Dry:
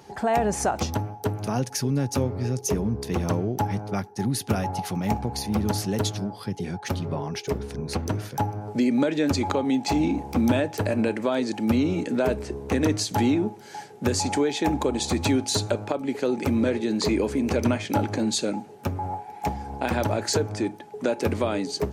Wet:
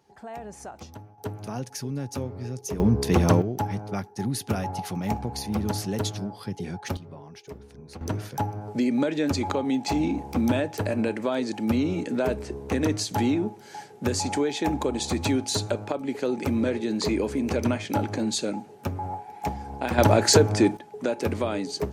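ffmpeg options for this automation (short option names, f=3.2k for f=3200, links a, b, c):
-af "asetnsamples=n=441:p=0,asendcmd='1.18 volume volume -7dB;2.8 volume volume 6dB;3.42 volume volume -2.5dB;6.97 volume volume -14dB;8.01 volume volume -2dB;19.98 volume volume 7dB;20.77 volume volume -2dB',volume=-16dB"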